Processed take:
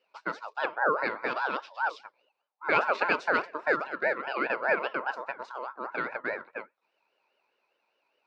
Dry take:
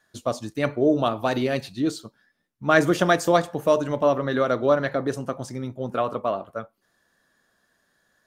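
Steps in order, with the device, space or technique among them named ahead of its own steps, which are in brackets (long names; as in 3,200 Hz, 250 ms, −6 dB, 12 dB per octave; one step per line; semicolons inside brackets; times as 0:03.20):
0:03.85–0:04.48: high-pass filter 420 Hz → 200 Hz 12 dB per octave
voice changer toy (ring modulator whose carrier an LFO sweeps 990 Hz, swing 25%, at 4.9 Hz; loudspeaker in its box 450–3,900 Hz, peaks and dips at 720 Hz −5 dB, 1,200 Hz −4 dB, 1,900 Hz −7 dB, 3,200 Hz −8 dB)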